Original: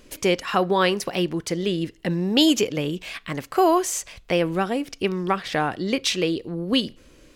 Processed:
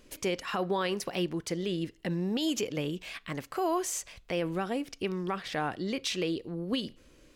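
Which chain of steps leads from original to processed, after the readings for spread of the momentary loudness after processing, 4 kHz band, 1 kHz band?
6 LU, −11.0 dB, −10.5 dB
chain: brickwall limiter −14 dBFS, peak gain reduction 10 dB
level −7 dB

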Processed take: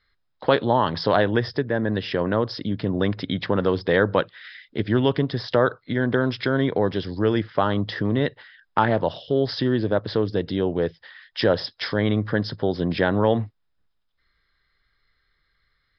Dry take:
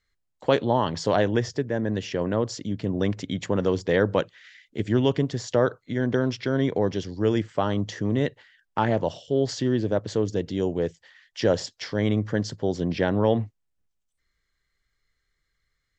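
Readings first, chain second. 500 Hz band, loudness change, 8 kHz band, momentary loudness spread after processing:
+2.0 dB, +2.5 dB, can't be measured, 6 LU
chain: in parallel at +1 dB: downward compressor, threshold −29 dBFS, peak gain reduction 13.5 dB
on the sum: Chebyshev low-pass with heavy ripple 5,200 Hz, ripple 6 dB
level +4.5 dB

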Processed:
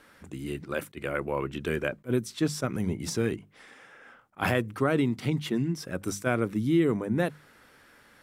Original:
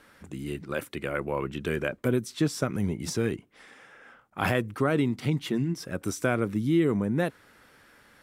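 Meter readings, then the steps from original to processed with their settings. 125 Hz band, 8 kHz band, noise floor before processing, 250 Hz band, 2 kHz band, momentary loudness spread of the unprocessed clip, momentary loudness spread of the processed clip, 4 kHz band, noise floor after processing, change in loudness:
−1.0 dB, 0.0 dB, −59 dBFS, −0.5 dB, −0.5 dB, 9 LU, 9 LU, −0.5 dB, −58 dBFS, −0.5 dB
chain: mains-hum notches 50/100/150/200 Hz
level that may rise only so fast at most 460 dB per second

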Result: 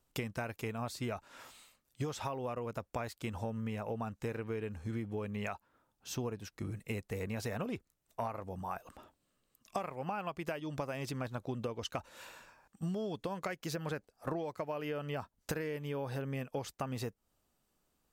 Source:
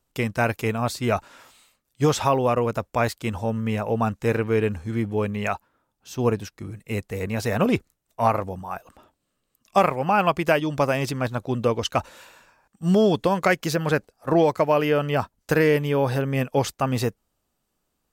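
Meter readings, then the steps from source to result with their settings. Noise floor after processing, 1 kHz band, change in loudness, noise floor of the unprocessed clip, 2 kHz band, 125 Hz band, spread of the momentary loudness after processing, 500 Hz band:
−81 dBFS, −17.0 dB, −16.5 dB, −76 dBFS, −16.5 dB, −14.5 dB, 6 LU, −17.0 dB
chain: downward compressor 16 to 1, threshold −32 dBFS, peak gain reduction 20 dB
level −2.5 dB

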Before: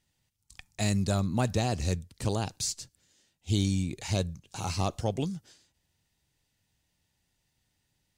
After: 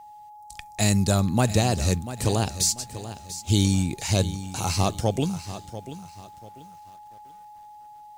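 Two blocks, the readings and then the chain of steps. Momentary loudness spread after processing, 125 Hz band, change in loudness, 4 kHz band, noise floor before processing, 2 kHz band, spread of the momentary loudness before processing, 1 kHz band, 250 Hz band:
18 LU, +6.5 dB, +6.5 dB, +7.5 dB, −78 dBFS, +6.5 dB, 11 LU, +7.0 dB, +6.5 dB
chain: high-shelf EQ 10,000 Hz +12 dB
steady tone 840 Hz −49 dBFS
feedback echo at a low word length 691 ms, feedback 35%, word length 9 bits, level −13 dB
level +6 dB

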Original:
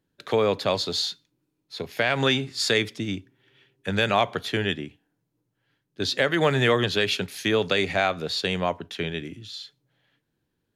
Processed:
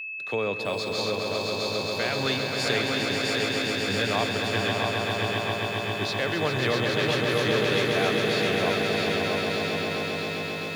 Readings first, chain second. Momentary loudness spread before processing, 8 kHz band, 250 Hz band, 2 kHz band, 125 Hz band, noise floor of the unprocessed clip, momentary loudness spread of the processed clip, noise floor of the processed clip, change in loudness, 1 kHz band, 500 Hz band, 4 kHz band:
16 LU, +0.5 dB, +0.5 dB, +1.5 dB, +0.5 dB, −78 dBFS, 5 LU, −32 dBFS, −1.0 dB, 0.0 dB, 0.0 dB, 0.0 dB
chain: echo that builds up and dies away 134 ms, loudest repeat 5, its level −6 dB
steady tone 2,600 Hz −26 dBFS
feedback echo at a low word length 651 ms, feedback 55%, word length 7 bits, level −4.5 dB
level −6.5 dB

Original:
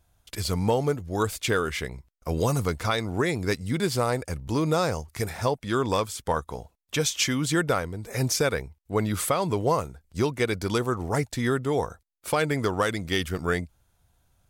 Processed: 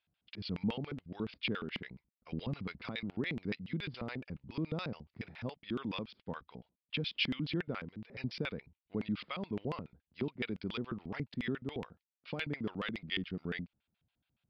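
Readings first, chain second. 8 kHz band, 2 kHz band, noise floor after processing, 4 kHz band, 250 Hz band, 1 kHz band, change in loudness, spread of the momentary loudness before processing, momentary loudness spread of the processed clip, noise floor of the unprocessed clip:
below −40 dB, −11.0 dB, below −85 dBFS, −9.0 dB, −9.5 dB, −19.5 dB, −13.0 dB, 8 LU, 10 LU, −69 dBFS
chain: downsampling to 11,025 Hz
auto-filter band-pass square 7.1 Hz 210–2,700 Hz
level −3 dB

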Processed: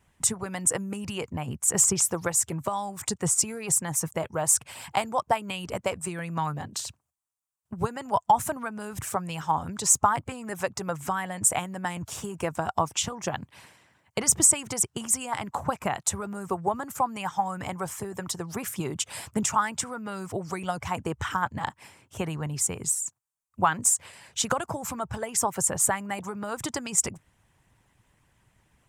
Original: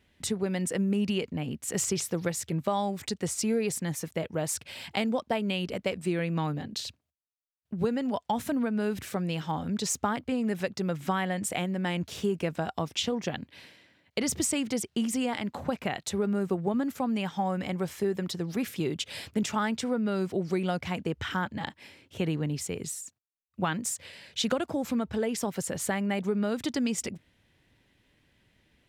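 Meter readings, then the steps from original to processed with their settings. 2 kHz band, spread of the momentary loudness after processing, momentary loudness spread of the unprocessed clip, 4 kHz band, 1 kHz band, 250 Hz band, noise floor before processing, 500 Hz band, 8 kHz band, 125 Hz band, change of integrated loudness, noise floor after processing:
+1.5 dB, 11 LU, 6 LU, −1.0 dB, +7.0 dB, −5.5 dB, −75 dBFS, −1.5 dB, +11.0 dB, −1.5 dB, +3.5 dB, −73 dBFS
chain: graphic EQ with 10 bands 125 Hz +9 dB, 250 Hz −8 dB, 500 Hz −5 dB, 1,000 Hz +9 dB, 2,000 Hz −4 dB, 4,000 Hz −10 dB, 8,000 Hz +9 dB
harmonic and percussive parts rebalanced harmonic −11 dB
level +6 dB

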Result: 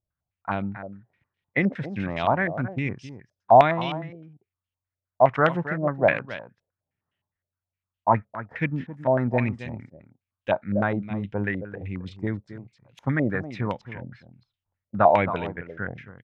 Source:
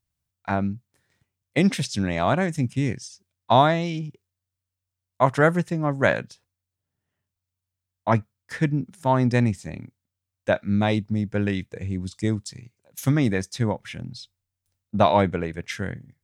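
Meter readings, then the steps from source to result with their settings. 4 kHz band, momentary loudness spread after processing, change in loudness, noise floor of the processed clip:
−7.5 dB, 19 LU, −1.0 dB, below −85 dBFS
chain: single-tap delay 269 ms −12.5 dB
low-pass on a step sequencer 9.7 Hz 580–3,000 Hz
level −5 dB

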